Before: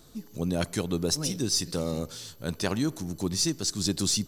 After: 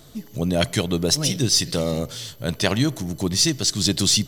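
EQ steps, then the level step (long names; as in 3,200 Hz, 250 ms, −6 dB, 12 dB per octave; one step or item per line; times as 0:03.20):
dynamic equaliser 3,500 Hz, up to +4 dB, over −41 dBFS, Q 0.79
thirty-one-band graphic EQ 125 Hz +10 dB, 630 Hz +6 dB, 2,000 Hz +6 dB, 3,150 Hz +6 dB, 16,000 Hz +6 dB
+5.0 dB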